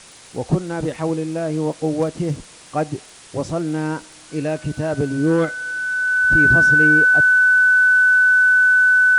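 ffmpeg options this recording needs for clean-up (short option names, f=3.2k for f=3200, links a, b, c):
-af "adeclick=t=4,bandreject=f=1.5k:w=30,afwtdn=0.0089"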